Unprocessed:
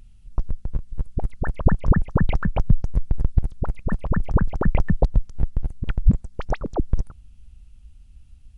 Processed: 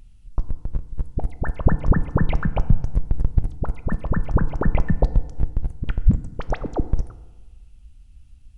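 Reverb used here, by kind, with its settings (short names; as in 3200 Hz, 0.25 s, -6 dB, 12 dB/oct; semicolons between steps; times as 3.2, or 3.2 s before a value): FDN reverb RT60 1.3 s, low-frequency decay 0.9×, high-frequency decay 0.6×, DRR 12.5 dB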